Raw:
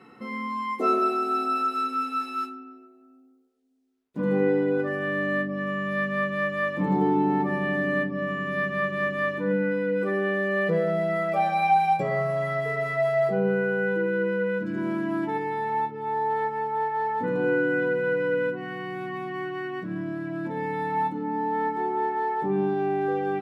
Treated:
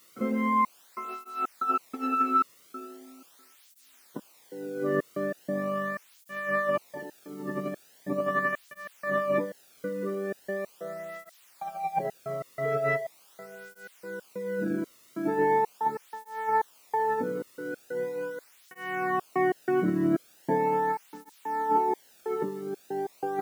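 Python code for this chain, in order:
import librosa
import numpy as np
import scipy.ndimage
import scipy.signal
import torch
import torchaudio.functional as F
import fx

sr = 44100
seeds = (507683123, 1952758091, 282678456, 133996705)

p1 = fx.wiener(x, sr, points=9)
p2 = fx.low_shelf(p1, sr, hz=160.0, db=11.0)
p3 = fx.over_compress(p2, sr, threshold_db=-29.0, ratio=-0.5)
p4 = fx.bandpass_edges(p3, sr, low_hz=100.0, high_hz=6100.0)
p5 = fx.bass_treble(p4, sr, bass_db=-3, treble_db=-13)
p6 = p5 + fx.echo_feedback(p5, sr, ms=250, feedback_pct=41, wet_db=-16, dry=0)
p7 = fx.step_gate(p6, sr, bpm=93, pattern='.xxx..xxx.x', floor_db=-60.0, edge_ms=4.5)
p8 = fx.quant_dither(p7, sr, seeds[0], bits=10, dither='triangular')
p9 = fx.flanger_cancel(p8, sr, hz=0.4, depth_ms=1.3)
y = p9 * 10.0 ** (5.0 / 20.0)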